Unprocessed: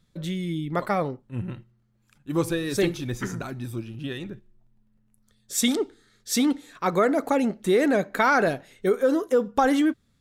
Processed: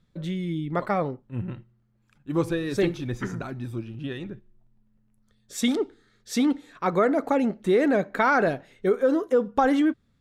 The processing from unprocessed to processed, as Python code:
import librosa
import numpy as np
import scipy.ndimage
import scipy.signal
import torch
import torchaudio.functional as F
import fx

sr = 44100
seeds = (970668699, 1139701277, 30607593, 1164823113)

y = fx.lowpass(x, sr, hz=2700.0, slope=6)